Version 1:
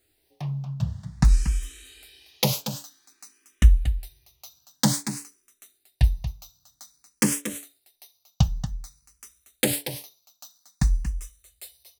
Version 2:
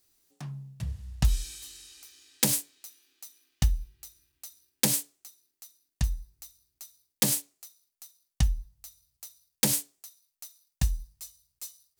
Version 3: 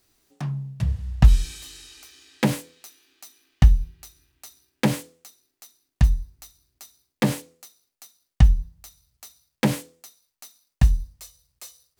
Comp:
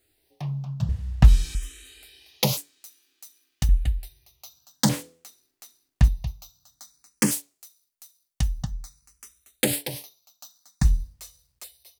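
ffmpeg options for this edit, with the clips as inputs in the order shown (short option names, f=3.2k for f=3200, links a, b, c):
-filter_complex "[2:a]asplit=3[a][b][c];[1:a]asplit=2[d][e];[0:a]asplit=6[f][g][h][i][j][k];[f]atrim=end=0.892[l];[a]atrim=start=0.888:end=1.552[m];[g]atrim=start=1.548:end=2.572[n];[d]atrim=start=2.568:end=3.692[o];[h]atrim=start=3.688:end=4.892[p];[b]atrim=start=4.888:end=6.082[q];[i]atrim=start=6.078:end=7.312[r];[e]atrim=start=7.308:end=8.632[s];[j]atrim=start=8.628:end=10.852[t];[c]atrim=start=10.848:end=11.642[u];[k]atrim=start=11.638[v];[l][m]acrossfade=d=0.004:c1=hsin:c2=hsin[w];[w][n]acrossfade=d=0.004:c1=hsin:c2=hsin[x];[x][o]acrossfade=d=0.004:c1=hsin:c2=hsin[y];[y][p]acrossfade=d=0.004:c1=hsin:c2=hsin[z];[z][q]acrossfade=d=0.004:c1=hsin:c2=hsin[aa];[aa][r]acrossfade=d=0.004:c1=hsin:c2=hsin[ab];[ab][s]acrossfade=d=0.004:c1=hsin:c2=hsin[ac];[ac][t]acrossfade=d=0.004:c1=hsin:c2=hsin[ad];[ad][u]acrossfade=d=0.004:c1=hsin:c2=hsin[ae];[ae][v]acrossfade=d=0.004:c1=hsin:c2=hsin"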